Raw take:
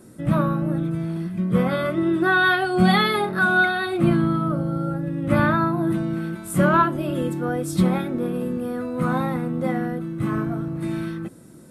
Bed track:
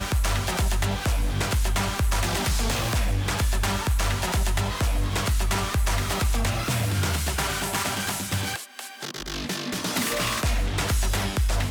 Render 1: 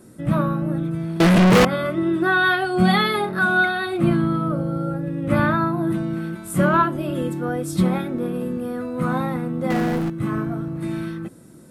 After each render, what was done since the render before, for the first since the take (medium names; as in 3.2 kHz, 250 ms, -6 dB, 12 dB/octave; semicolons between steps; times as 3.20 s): 1.20–1.65 s: overdrive pedal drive 45 dB, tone 5.1 kHz, clips at -6.5 dBFS; 4.32–5.31 s: small resonant body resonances 470/2400 Hz, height 9 dB; 9.70–10.10 s: power-law waveshaper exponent 0.5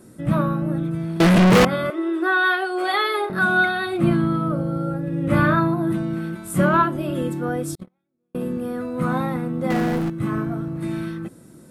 1.90–3.30 s: rippled Chebyshev high-pass 300 Hz, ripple 3 dB; 5.09–5.74 s: doubling 30 ms -5 dB; 7.75–8.35 s: gate -13 dBFS, range -51 dB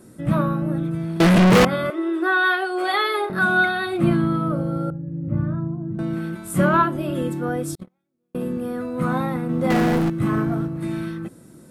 4.90–5.99 s: band-pass filter 100 Hz, Q 1; 9.49–10.67 s: waveshaping leveller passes 1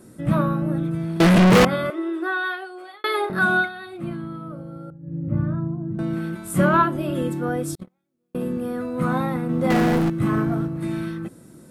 1.71–3.04 s: fade out linear; 3.55–5.14 s: dip -12 dB, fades 0.14 s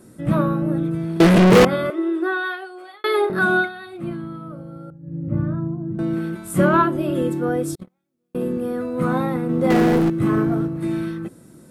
dynamic bell 400 Hz, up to +7 dB, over -36 dBFS, Q 1.9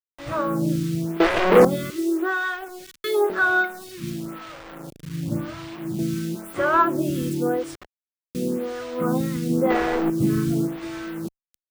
bit crusher 6-bit; lamp-driven phase shifter 0.94 Hz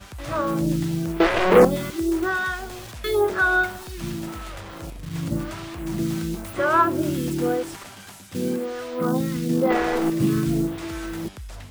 add bed track -14.5 dB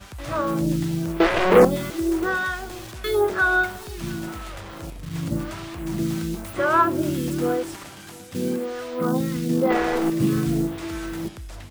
echo from a far wall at 120 m, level -23 dB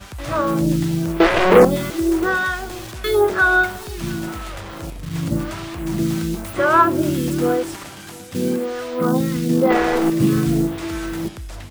trim +4.5 dB; peak limiter -2 dBFS, peak gain reduction 2.5 dB